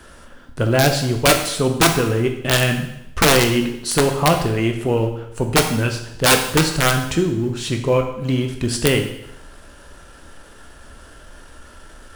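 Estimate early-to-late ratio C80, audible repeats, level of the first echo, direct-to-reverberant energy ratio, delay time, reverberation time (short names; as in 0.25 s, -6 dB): 10.0 dB, none, none, 4.0 dB, none, 0.80 s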